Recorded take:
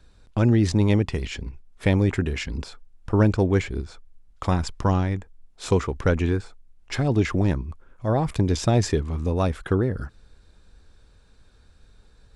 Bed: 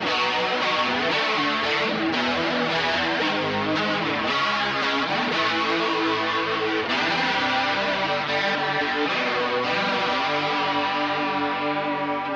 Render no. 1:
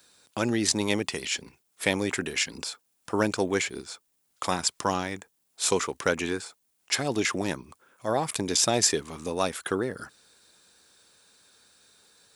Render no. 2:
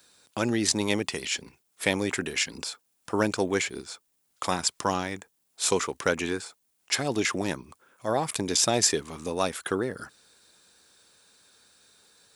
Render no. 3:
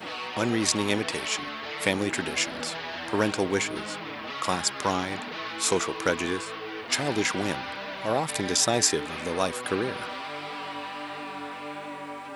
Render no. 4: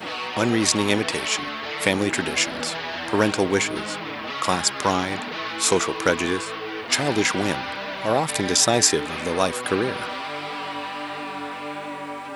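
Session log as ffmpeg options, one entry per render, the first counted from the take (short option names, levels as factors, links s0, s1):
-af "highpass=130,aemphasis=mode=production:type=riaa"
-af anull
-filter_complex "[1:a]volume=0.237[s0];[0:a][s0]amix=inputs=2:normalize=0"
-af "volume=1.78,alimiter=limit=0.794:level=0:latency=1"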